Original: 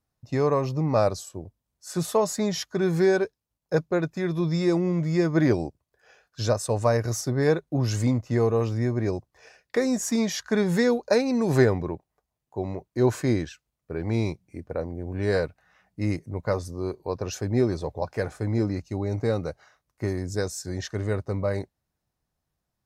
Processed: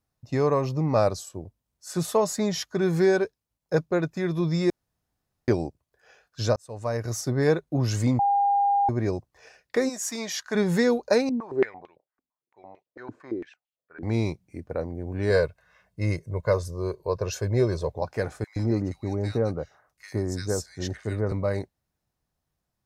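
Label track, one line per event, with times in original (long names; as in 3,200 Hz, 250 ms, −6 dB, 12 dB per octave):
4.700000	5.480000	fill with room tone
6.560000	7.290000	fade in
8.190000	8.890000	beep over 805 Hz −18.5 dBFS
9.880000	10.540000	high-pass filter 1,400 Hz → 530 Hz 6 dB per octave
11.290000	14.030000	band-pass on a step sequencer 8.9 Hz 270–3,000 Hz
15.300000	17.900000	comb filter 1.9 ms, depth 61%
18.440000	21.320000	multiband delay without the direct sound highs, lows 120 ms, split 1,600 Hz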